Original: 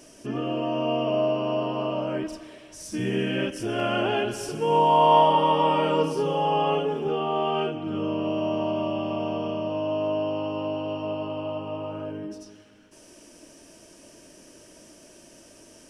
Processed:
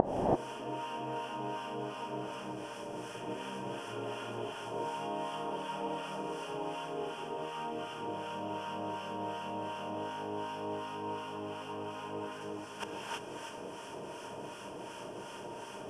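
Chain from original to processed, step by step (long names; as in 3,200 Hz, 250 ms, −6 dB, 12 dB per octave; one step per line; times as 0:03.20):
compressor on every frequency bin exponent 0.2
two-band tremolo in antiphase 2.7 Hz, depth 100%, crossover 960 Hz
gate with flip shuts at −20 dBFS, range −35 dB
reverb whose tail is shaped and stops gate 360 ms rising, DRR −4.5 dB
level +11.5 dB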